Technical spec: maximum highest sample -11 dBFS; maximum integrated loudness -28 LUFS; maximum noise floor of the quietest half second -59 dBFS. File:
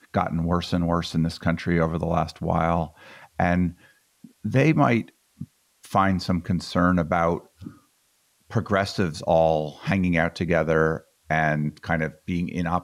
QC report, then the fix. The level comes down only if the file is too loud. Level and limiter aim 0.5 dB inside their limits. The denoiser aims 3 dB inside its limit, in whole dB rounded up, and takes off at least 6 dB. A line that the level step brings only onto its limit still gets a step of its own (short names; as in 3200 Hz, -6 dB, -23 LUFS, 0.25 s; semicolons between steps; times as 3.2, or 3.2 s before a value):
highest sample -7.0 dBFS: fail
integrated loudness -24.0 LUFS: fail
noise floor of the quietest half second -66 dBFS: OK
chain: gain -4.5 dB